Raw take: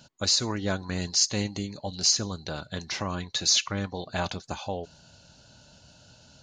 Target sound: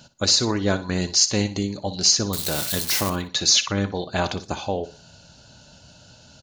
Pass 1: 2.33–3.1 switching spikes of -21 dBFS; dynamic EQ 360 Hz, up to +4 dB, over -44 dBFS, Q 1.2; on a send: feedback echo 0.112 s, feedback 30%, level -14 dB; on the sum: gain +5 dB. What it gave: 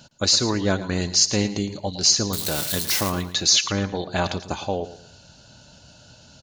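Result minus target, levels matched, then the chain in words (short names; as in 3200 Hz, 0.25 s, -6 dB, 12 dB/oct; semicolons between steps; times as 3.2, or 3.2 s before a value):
echo 52 ms late
2.33–3.1 switching spikes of -21 dBFS; dynamic EQ 360 Hz, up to +4 dB, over -44 dBFS, Q 1.2; on a send: feedback echo 60 ms, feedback 30%, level -14 dB; on the sum: gain +5 dB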